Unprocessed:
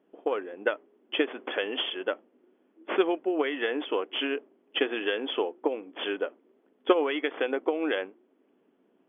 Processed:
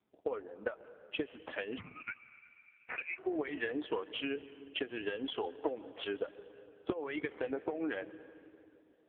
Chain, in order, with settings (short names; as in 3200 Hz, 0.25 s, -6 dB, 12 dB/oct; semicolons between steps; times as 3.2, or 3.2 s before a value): per-bin expansion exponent 1.5; 3.76–4.33 high shelf 2300 Hz +2 dB; compressor 16:1, threshold -33 dBFS, peak gain reduction 18 dB; 5.43–5.96 sample leveller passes 1; reverb RT60 3.2 s, pre-delay 90 ms, DRR 14.5 dB; 1.78–3.18 inverted band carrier 2900 Hz; gain +2.5 dB; AMR-NB 5.15 kbps 8000 Hz